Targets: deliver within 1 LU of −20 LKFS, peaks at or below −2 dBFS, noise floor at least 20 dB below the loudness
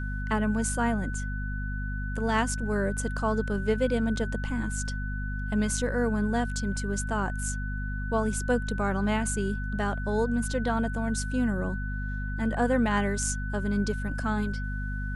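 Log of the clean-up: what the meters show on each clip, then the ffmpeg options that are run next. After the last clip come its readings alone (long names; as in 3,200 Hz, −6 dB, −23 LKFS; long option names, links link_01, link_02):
mains hum 50 Hz; hum harmonics up to 250 Hz; level of the hum −30 dBFS; interfering tone 1,500 Hz; level of the tone −38 dBFS; integrated loudness −29.0 LKFS; sample peak −13.5 dBFS; target loudness −20.0 LKFS
→ -af "bandreject=frequency=50:width_type=h:width=6,bandreject=frequency=100:width_type=h:width=6,bandreject=frequency=150:width_type=h:width=6,bandreject=frequency=200:width_type=h:width=6,bandreject=frequency=250:width_type=h:width=6"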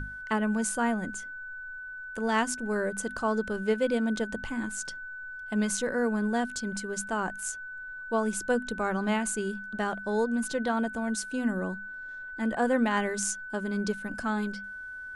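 mains hum none found; interfering tone 1,500 Hz; level of the tone −38 dBFS
→ -af "bandreject=frequency=1500:width=30"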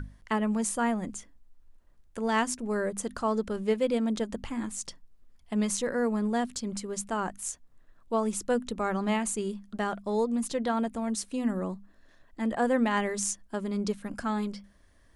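interfering tone none found; integrated loudness −30.5 LKFS; sample peak −13.5 dBFS; target loudness −20.0 LKFS
→ -af "volume=10.5dB"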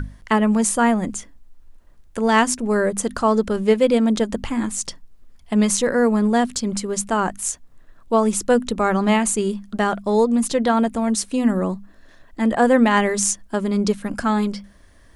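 integrated loudness −20.0 LKFS; sample peak −3.0 dBFS; background noise floor −49 dBFS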